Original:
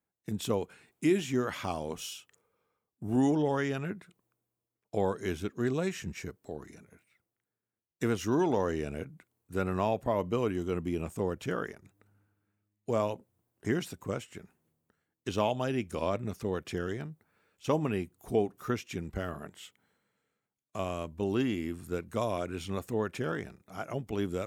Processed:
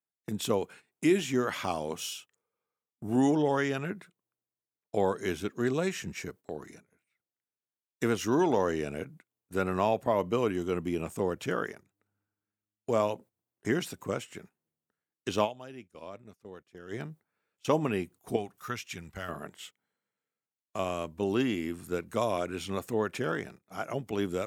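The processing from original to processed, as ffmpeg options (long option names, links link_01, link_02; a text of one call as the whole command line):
ffmpeg -i in.wav -filter_complex "[0:a]asettb=1/sr,asplit=3[link_01][link_02][link_03];[link_01]atrim=end=18.364[link_04];[link_02]atrim=start=18.36:end=19.29,asetpts=PTS-STARTPTS,afade=type=in:duration=0.004:curve=qsin,afade=type=out:start_time=0.926:duration=0.004:curve=qsin,equalizer=frequency=340:width=0.63:gain=-12[link_05];[link_03]atrim=start=19.286[link_06];[link_04][link_05]acrossfade=duration=0.004:curve1=hsin:curve2=qsin[link_07];[link_07][link_06]acrossfade=duration=0.004:curve1=qsin:curve2=hsin,asplit=3[link_08][link_09][link_10];[link_08]atrim=end=15.72,asetpts=PTS-STARTPTS,afade=type=out:start_time=15.44:duration=0.28:curve=exp:silence=0.16788[link_11];[link_09]atrim=start=15.72:end=16.66,asetpts=PTS-STARTPTS,volume=-15.5dB[link_12];[link_10]atrim=start=16.66,asetpts=PTS-STARTPTS,afade=type=in:duration=0.28:curve=exp:silence=0.16788[link_13];[link_11][link_12][link_13]concat=n=3:v=0:a=1,highpass=95,agate=range=-14dB:threshold=-51dB:ratio=16:detection=peak,lowshelf=frequency=280:gain=-4.5,volume=3.5dB" out.wav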